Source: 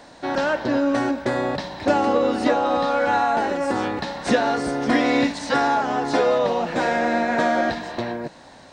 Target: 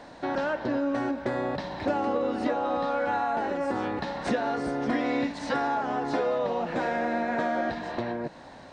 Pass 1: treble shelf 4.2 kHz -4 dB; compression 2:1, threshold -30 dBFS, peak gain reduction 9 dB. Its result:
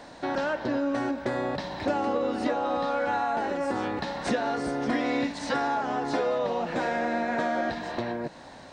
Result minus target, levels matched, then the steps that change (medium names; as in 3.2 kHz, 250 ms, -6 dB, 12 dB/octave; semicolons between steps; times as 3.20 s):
8 kHz band +4.5 dB
change: treble shelf 4.2 kHz -11 dB